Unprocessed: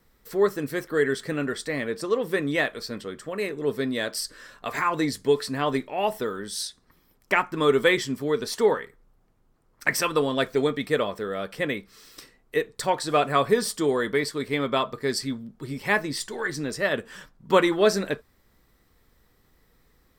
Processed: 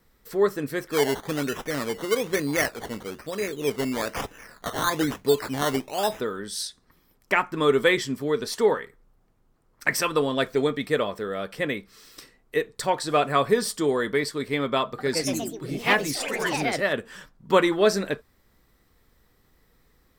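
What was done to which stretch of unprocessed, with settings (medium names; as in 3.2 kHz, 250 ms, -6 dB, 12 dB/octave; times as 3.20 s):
0.89–6.20 s: decimation with a swept rate 14×, swing 60% 1.1 Hz
14.84–17.15 s: ever faster or slower copies 146 ms, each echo +3 st, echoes 3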